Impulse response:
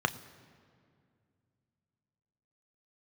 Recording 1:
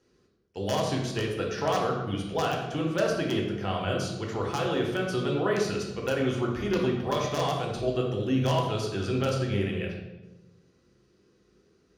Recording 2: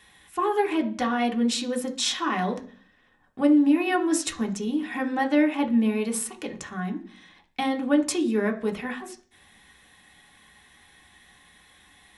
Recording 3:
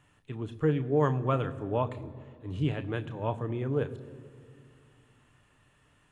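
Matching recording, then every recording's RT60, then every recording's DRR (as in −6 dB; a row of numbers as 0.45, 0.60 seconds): 3; 1.1, 0.45, 2.3 seconds; −1.0, 2.0, 9.0 decibels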